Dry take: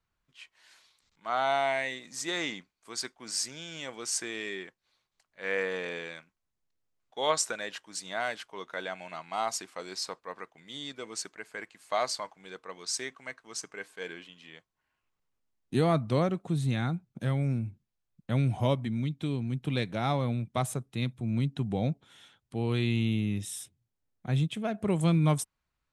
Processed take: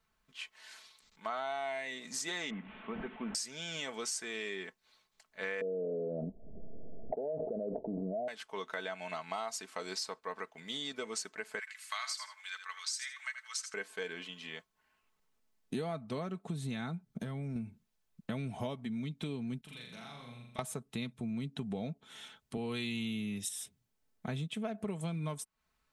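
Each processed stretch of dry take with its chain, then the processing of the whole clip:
2.50–3.35 s: one-bit delta coder 16 kbps, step -50.5 dBFS + peaking EQ 210 Hz +10.5 dB 0.57 oct
5.61–8.28 s: steep low-pass 690 Hz 72 dB/octave + level flattener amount 100%
11.59–13.74 s: high-pass 1.3 kHz 24 dB/octave + feedback delay 80 ms, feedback 16%, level -10 dB
17.06–17.56 s: bass shelf 370 Hz +5.5 dB + band-stop 2.6 kHz, Q 17 + compression 2.5:1, threshold -39 dBFS
19.61–20.59 s: amplifier tone stack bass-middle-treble 5-5-5 + compression 10:1, threshold -50 dBFS + flutter echo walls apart 7 m, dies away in 0.76 s
22.57–23.49 s: treble shelf 3 kHz +9.5 dB + three bands expanded up and down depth 40%
whole clip: bass shelf 160 Hz -5 dB; comb 4.6 ms, depth 49%; compression 6:1, threshold -41 dBFS; trim +5 dB

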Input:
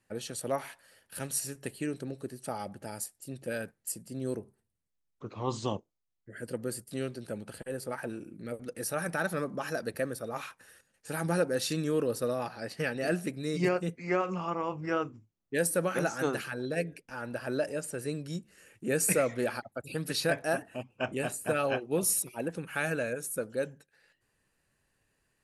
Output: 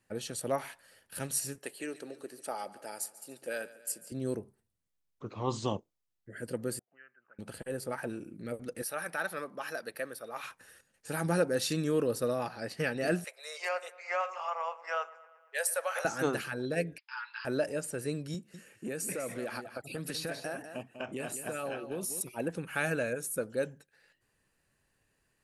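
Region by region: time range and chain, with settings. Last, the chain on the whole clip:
1.58–4.12 s: high-pass 420 Hz + feedback delay 143 ms, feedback 59%, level -18 dB
6.79–7.39 s: brick-wall FIR low-pass 3.1 kHz + auto-wah 670–1700 Hz, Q 12, up, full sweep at -32 dBFS
8.82–10.44 s: high-pass 890 Hz 6 dB/octave + peaking EQ 7 kHz -8 dB 0.68 oct
13.24–16.05 s: steep high-pass 560 Hz 48 dB/octave + feedback echo behind a low-pass 116 ms, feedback 61%, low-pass 2.4 kHz, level -18.5 dB
16.98–17.45 s: brick-wall FIR band-pass 850–5300 Hz + tilt EQ +3 dB/octave
18.34–22.21 s: high-pass 130 Hz + compression, threshold -33 dBFS + delay 198 ms -10 dB
whole clip: none

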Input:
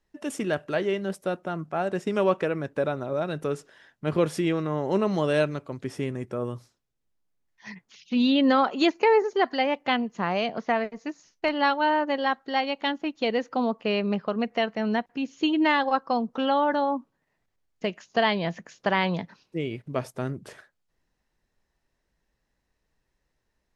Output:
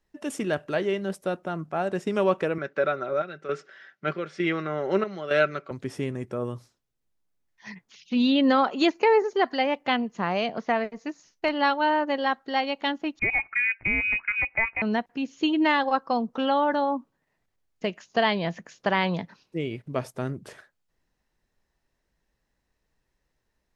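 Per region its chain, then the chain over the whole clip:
2.58–5.71 s: square tremolo 1.1 Hz, depth 65%, duty 70% + cabinet simulation 210–5900 Hz, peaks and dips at 240 Hz -6 dB, 940 Hz -7 dB, 1.4 kHz +10 dB, 2.1 kHz +7 dB + comb 5.2 ms, depth 37%
13.19–14.82 s: frequency inversion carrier 2.7 kHz + bass shelf 230 Hz +6 dB
whole clip: none

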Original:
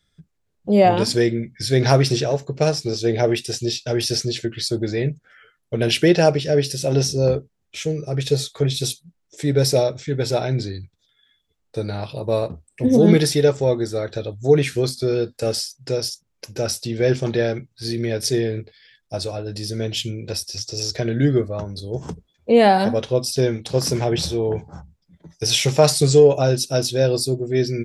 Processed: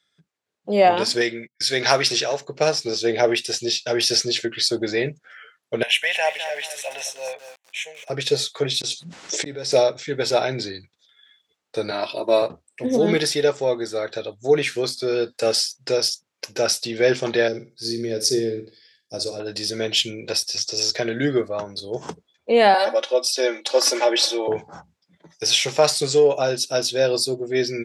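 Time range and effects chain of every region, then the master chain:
1.21–2.41 s: tilt shelf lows -4.5 dB, about 770 Hz + gate -36 dBFS, range -29 dB
5.83–8.10 s: high-pass 980 Hz + static phaser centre 1.3 kHz, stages 6 + bit-crushed delay 206 ms, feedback 35%, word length 7-bit, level -9.5 dB
8.81–9.72 s: low-pass 8.2 kHz 24 dB/octave + inverted gate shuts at -17 dBFS, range -35 dB + level flattener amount 100%
11.91–12.42 s: high-pass 140 Hz 24 dB/octave + comb 3.1 ms, depth 72%
17.48–19.40 s: high-order bell 1.5 kHz -13.5 dB 2.8 oct + flutter echo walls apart 9 m, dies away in 0.29 s
22.74–24.48 s: high-pass 360 Hz 24 dB/octave + comb 3.5 ms, depth 81%
whole clip: treble shelf 8.1 kHz -4 dB; level rider gain up to 6 dB; frequency weighting A

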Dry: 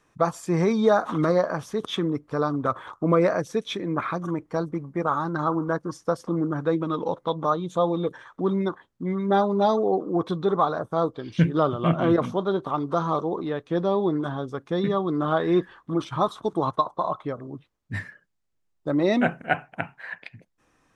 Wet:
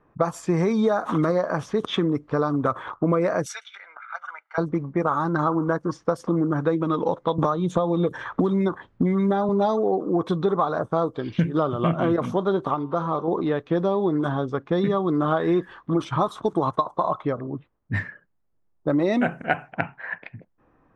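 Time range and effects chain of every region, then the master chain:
3.46–4.58 s: high-pass 1.3 kHz 24 dB/octave + comb 1.4 ms, depth 79% + compressor with a negative ratio -37 dBFS, ratio -0.5
7.38–9.49 s: peaking EQ 75 Hz +7 dB 1.7 oct + three bands compressed up and down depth 100%
12.74–13.28 s: treble shelf 7 kHz -9 dB + feedback comb 130 Hz, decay 1.1 s, mix 50%
whole clip: level-controlled noise filter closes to 1.1 kHz, open at -21 dBFS; dynamic bell 4.2 kHz, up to -4 dB, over -50 dBFS, Q 1.4; compression, threshold -24 dBFS; trim +6 dB

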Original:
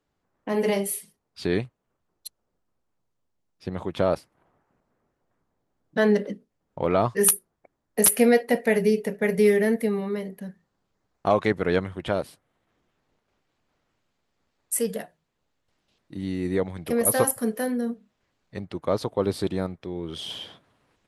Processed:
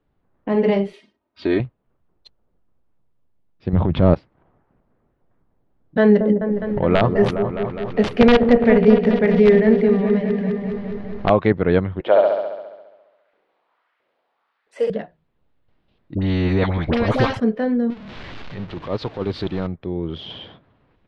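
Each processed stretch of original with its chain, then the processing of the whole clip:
0.93–1.60 s: high-pass 320 Hz 6 dB/octave + comb 3.2 ms, depth 81%
3.73–4.14 s: tone controls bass +10 dB, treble 0 dB + transient shaper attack -7 dB, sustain +8 dB + decimation joined by straight lines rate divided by 2×
6.00–11.30 s: integer overflow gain 10 dB + upward compressor, threshold -24 dBFS + delay with an opening low-pass 206 ms, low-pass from 750 Hz, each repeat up 1 oct, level -6 dB
12.00–14.90 s: LFO high-pass saw up 1.5 Hz 420–1900 Hz + flutter echo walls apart 11.7 m, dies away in 1.2 s
16.15–17.40 s: bass shelf 140 Hz +12 dB + phase dispersion highs, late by 68 ms, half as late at 970 Hz + spectrum-flattening compressor 2:1
17.90–19.67 s: jump at every zero crossing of -32 dBFS + tilt shelf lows -5 dB, about 1.4 kHz + transient shaper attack -11 dB, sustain -7 dB
whole clip: low-pass 4 kHz 24 dB/octave; tilt EQ -2 dB/octave; trim +3.5 dB

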